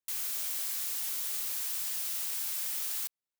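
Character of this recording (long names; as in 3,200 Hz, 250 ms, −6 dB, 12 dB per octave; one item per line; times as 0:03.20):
background noise floor −93 dBFS
spectral slope +3.0 dB per octave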